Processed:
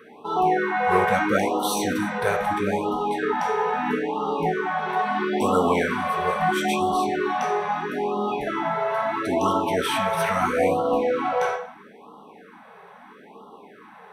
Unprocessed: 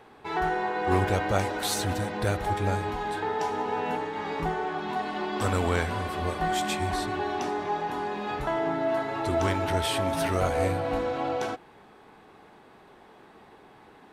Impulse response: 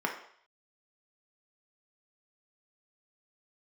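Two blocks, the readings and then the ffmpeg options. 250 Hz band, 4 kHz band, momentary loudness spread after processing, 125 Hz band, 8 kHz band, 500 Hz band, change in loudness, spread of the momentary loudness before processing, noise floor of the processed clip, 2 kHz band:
+5.5 dB, +1.5 dB, 5 LU, -4.5 dB, +1.0 dB, +5.0 dB, +5.0 dB, 5 LU, -48 dBFS, +6.0 dB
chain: -filter_complex "[0:a]highshelf=f=7200:g=7.5[s0];[1:a]atrim=start_sample=2205,asetrate=48510,aresample=44100[s1];[s0][s1]afir=irnorm=-1:irlink=0,afftfilt=real='re*(1-between(b*sr/1024,260*pow(2000/260,0.5+0.5*sin(2*PI*0.76*pts/sr))/1.41,260*pow(2000/260,0.5+0.5*sin(2*PI*0.76*pts/sr))*1.41))':imag='im*(1-between(b*sr/1024,260*pow(2000/260,0.5+0.5*sin(2*PI*0.76*pts/sr))/1.41,260*pow(2000/260,0.5+0.5*sin(2*PI*0.76*pts/sr))*1.41))':win_size=1024:overlap=0.75"

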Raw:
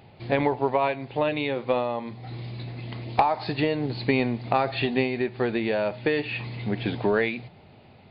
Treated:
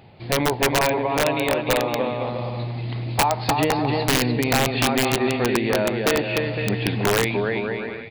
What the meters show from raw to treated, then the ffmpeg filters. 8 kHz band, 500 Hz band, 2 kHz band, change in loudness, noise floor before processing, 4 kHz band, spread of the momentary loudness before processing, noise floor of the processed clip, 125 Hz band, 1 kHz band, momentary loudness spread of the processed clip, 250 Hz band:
no reading, +3.5 dB, +6.0 dB, +4.5 dB, -52 dBFS, +10.0 dB, 12 LU, -33 dBFS, +6.5 dB, +3.5 dB, 7 LU, +4.0 dB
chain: -af "aecho=1:1:300|510|657|759.9|831.9:0.631|0.398|0.251|0.158|0.1,aeval=exprs='(mod(4.73*val(0)+1,2)-1)/4.73':c=same,volume=1.33"

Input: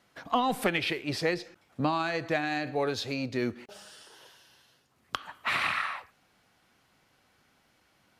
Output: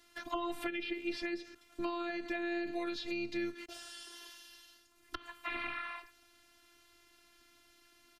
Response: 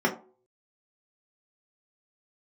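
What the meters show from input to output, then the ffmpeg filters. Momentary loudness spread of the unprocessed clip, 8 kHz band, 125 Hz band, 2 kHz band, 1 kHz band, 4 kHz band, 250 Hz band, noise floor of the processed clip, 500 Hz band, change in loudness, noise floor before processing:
14 LU, -8.5 dB, -22.0 dB, -9.0 dB, -11.5 dB, -9.5 dB, -5.0 dB, -66 dBFS, -8.5 dB, -9.0 dB, -68 dBFS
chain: -filter_complex "[0:a]acrossover=split=3500[s0][s1];[s1]acompressor=threshold=0.00178:ratio=4:attack=1:release=60[s2];[s0][s2]amix=inputs=2:normalize=0,equalizer=f=690:t=o:w=2.2:g=-10,acrossover=split=320|650[s3][s4][s5];[s3]acompressor=threshold=0.00708:ratio=4[s6];[s4]acompressor=threshold=0.00282:ratio=4[s7];[s5]acompressor=threshold=0.00501:ratio=4[s8];[s6][s7][s8]amix=inputs=3:normalize=0,afftfilt=real='hypot(re,im)*cos(PI*b)':imag='0':win_size=512:overlap=0.75,asplit=2[s9][s10];[s10]asoftclip=type=tanh:threshold=0.0158,volume=0.447[s11];[s9][s11]amix=inputs=2:normalize=0,aresample=32000,aresample=44100,volume=2"

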